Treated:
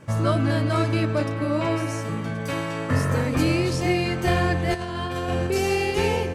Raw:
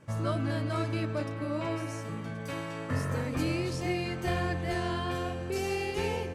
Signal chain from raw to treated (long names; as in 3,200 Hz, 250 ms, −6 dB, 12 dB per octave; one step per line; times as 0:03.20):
0:04.74–0:05.47: compressor whose output falls as the input rises −35 dBFS, ratio −0.5
level +9 dB